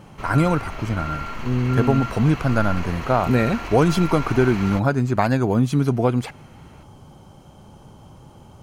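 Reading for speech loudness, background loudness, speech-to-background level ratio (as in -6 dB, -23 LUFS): -21.0 LUFS, -31.5 LUFS, 10.5 dB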